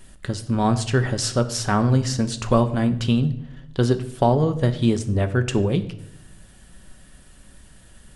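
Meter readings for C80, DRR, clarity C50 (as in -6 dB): 16.5 dB, 8.0 dB, 14.0 dB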